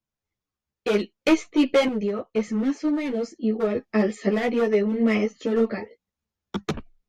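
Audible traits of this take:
sample-and-hold tremolo 1.6 Hz
a shimmering, thickened sound

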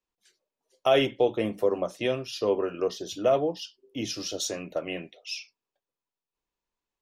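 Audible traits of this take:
background noise floor −92 dBFS
spectral slope −4.0 dB per octave

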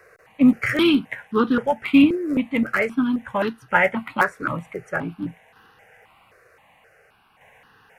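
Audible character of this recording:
tremolo saw down 0.54 Hz, depth 45%
notches that jump at a steady rate 3.8 Hz 860–2,200 Hz

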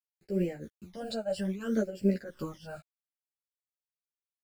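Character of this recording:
a quantiser's noise floor 10 bits, dither none
phaser sweep stages 12, 0.62 Hz, lowest notch 330–1,200 Hz
tremolo triangle 3 Hz, depth 85%
a shimmering, thickened sound

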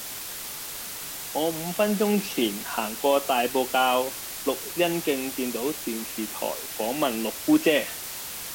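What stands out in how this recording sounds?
a quantiser's noise floor 6 bits, dither triangular
Ogg Vorbis

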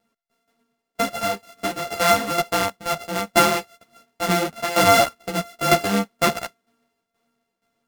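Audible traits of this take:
a buzz of ramps at a fixed pitch in blocks of 64 samples
tremolo saw down 2.1 Hz, depth 75%
a shimmering, thickened sound

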